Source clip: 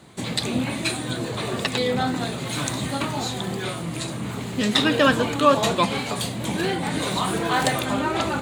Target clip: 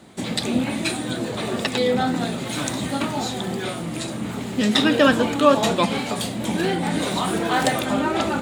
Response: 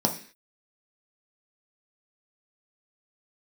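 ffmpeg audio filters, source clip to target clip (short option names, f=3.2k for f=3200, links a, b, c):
-filter_complex "[0:a]asplit=2[a][b];[1:a]atrim=start_sample=2205,lowpass=8.9k[c];[b][c]afir=irnorm=-1:irlink=0,volume=-23.5dB[d];[a][d]amix=inputs=2:normalize=0"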